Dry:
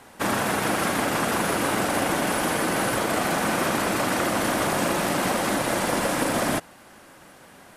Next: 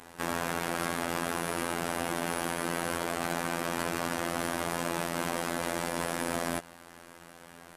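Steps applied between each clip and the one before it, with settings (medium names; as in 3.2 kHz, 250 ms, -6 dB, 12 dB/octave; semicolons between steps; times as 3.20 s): peak limiter -21.5 dBFS, peak gain reduction 10.5 dB; robot voice 85.2 Hz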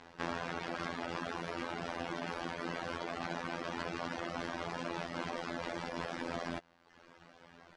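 low-pass 5.4 kHz 24 dB/octave; reverb removal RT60 1 s; trim -4 dB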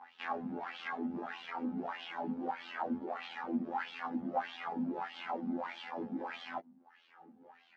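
wah-wah 1.6 Hz 210–3300 Hz, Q 5; chorus voices 4, 0.43 Hz, delay 20 ms, depth 1.3 ms; small resonant body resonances 220/800 Hz, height 16 dB, ringing for 65 ms; trim +10 dB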